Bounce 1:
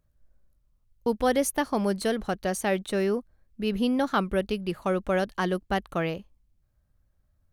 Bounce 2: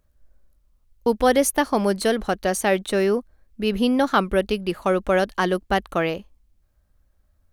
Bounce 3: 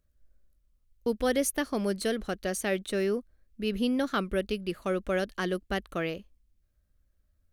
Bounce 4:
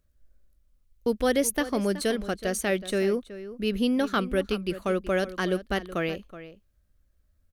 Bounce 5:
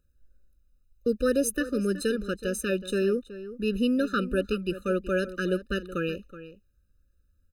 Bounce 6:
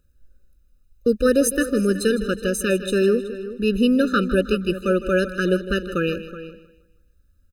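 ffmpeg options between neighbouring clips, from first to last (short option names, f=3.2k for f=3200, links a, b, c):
-af "equalizer=f=130:t=o:w=0.86:g=-9.5,volume=6.5dB"
-af "equalizer=f=880:t=o:w=0.74:g=-10,volume=-7dB"
-filter_complex "[0:a]asplit=2[a][b];[b]adelay=373.2,volume=-14dB,highshelf=f=4k:g=-8.4[c];[a][c]amix=inputs=2:normalize=0,volume=3dB"
-af "afftfilt=real='re*eq(mod(floor(b*sr/1024/600),2),0)':imag='im*eq(mod(floor(b*sr/1024/600),2),0)':win_size=1024:overlap=0.75"
-af "aecho=1:1:157|314|471|628:0.2|0.0758|0.0288|0.0109,volume=7dB"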